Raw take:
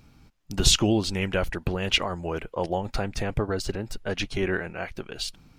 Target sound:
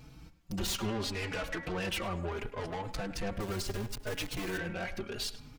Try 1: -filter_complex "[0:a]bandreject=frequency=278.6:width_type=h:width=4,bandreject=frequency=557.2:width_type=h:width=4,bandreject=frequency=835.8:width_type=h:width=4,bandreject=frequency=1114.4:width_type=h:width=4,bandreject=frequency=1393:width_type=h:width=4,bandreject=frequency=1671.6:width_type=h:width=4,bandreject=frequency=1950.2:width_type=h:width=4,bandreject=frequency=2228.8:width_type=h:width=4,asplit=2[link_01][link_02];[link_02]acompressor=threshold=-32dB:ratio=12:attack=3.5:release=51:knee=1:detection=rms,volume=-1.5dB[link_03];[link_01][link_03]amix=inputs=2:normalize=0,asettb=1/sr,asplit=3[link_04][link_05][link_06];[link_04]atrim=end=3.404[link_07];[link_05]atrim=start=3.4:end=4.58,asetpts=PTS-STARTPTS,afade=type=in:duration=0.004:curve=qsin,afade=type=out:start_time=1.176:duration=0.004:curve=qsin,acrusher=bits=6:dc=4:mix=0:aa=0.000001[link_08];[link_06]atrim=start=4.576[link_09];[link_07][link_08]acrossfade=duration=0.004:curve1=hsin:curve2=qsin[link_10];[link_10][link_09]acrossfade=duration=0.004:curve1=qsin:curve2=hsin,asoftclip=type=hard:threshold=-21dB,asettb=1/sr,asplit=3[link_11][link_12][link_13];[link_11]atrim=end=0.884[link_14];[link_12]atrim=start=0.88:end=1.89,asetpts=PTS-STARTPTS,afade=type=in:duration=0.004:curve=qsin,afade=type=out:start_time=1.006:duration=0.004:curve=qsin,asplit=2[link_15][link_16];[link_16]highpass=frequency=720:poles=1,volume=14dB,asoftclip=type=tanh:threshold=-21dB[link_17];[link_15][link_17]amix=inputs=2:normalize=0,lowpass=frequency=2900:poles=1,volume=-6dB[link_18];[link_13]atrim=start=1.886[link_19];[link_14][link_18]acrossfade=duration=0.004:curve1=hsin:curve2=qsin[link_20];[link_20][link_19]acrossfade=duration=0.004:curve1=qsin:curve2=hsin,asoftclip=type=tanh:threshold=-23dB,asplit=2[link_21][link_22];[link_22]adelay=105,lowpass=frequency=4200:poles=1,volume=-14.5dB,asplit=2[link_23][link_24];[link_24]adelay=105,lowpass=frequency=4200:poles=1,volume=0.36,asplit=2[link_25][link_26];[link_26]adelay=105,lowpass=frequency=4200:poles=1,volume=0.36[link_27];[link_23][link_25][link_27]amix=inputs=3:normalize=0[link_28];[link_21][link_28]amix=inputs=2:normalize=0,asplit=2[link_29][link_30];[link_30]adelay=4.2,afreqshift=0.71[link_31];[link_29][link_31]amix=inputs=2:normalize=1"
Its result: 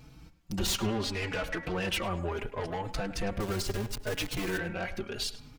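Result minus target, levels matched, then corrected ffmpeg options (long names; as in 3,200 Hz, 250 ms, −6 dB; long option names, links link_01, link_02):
soft clipping: distortion −7 dB
-filter_complex "[0:a]bandreject=frequency=278.6:width_type=h:width=4,bandreject=frequency=557.2:width_type=h:width=4,bandreject=frequency=835.8:width_type=h:width=4,bandreject=frequency=1114.4:width_type=h:width=4,bandreject=frequency=1393:width_type=h:width=4,bandreject=frequency=1671.6:width_type=h:width=4,bandreject=frequency=1950.2:width_type=h:width=4,bandreject=frequency=2228.8:width_type=h:width=4,asplit=2[link_01][link_02];[link_02]acompressor=threshold=-32dB:ratio=12:attack=3.5:release=51:knee=1:detection=rms,volume=-1.5dB[link_03];[link_01][link_03]amix=inputs=2:normalize=0,asettb=1/sr,asplit=3[link_04][link_05][link_06];[link_04]atrim=end=3.404[link_07];[link_05]atrim=start=3.4:end=4.58,asetpts=PTS-STARTPTS,afade=type=in:duration=0.004:curve=qsin,afade=type=out:start_time=1.176:duration=0.004:curve=qsin,acrusher=bits=6:dc=4:mix=0:aa=0.000001[link_08];[link_06]atrim=start=4.576[link_09];[link_07][link_08]acrossfade=duration=0.004:curve1=hsin:curve2=qsin[link_10];[link_10][link_09]acrossfade=duration=0.004:curve1=qsin:curve2=hsin,asoftclip=type=hard:threshold=-21dB,asettb=1/sr,asplit=3[link_11][link_12][link_13];[link_11]atrim=end=0.884[link_14];[link_12]atrim=start=0.88:end=1.89,asetpts=PTS-STARTPTS,afade=type=in:duration=0.004:curve=qsin,afade=type=out:start_time=1.006:duration=0.004:curve=qsin,asplit=2[link_15][link_16];[link_16]highpass=frequency=720:poles=1,volume=14dB,asoftclip=type=tanh:threshold=-21dB[link_17];[link_15][link_17]amix=inputs=2:normalize=0,lowpass=frequency=2900:poles=1,volume=-6dB[link_18];[link_13]atrim=start=1.886[link_19];[link_14][link_18]acrossfade=duration=0.004:curve1=hsin:curve2=qsin[link_20];[link_20][link_19]acrossfade=duration=0.004:curve1=qsin:curve2=hsin,asoftclip=type=tanh:threshold=-29dB,asplit=2[link_21][link_22];[link_22]adelay=105,lowpass=frequency=4200:poles=1,volume=-14.5dB,asplit=2[link_23][link_24];[link_24]adelay=105,lowpass=frequency=4200:poles=1,volume=0.36,asplit=2[link_25][link_26];[link_26]adelay=105,lowpass=frequency=4200:poles=1,volume=0.36[link_27];[link_23][link_25][link_27]amix=inputs=3:normalize=0[link_28];[link_21][link_28]amix=inputs=2:normalize=0,asplit=2[link_29][link_30];[link_30]adelay=4.2,afreqshift=0.71[link_31];[link_29][link_31]amix=inputs=2:normalize=1"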